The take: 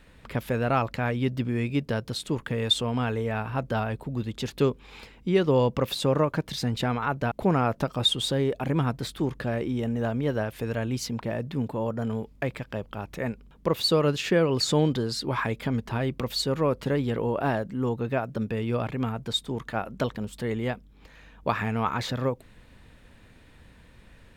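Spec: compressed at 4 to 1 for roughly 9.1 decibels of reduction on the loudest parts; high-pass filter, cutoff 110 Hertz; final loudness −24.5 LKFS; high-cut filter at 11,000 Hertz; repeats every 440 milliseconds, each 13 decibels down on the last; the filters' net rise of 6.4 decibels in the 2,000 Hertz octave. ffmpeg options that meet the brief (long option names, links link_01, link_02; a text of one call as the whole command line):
ffmpeg -i in.wav -af "highpass=110,lowpass=11000,equalizer=frequency=2000:width_type=o:gain=8.5,acompressor=threshold=-27dB:ratio=4,aecho=1:1:440|880|1320:0.224|0.0493|0.0108,volume=7.5dB" out.wav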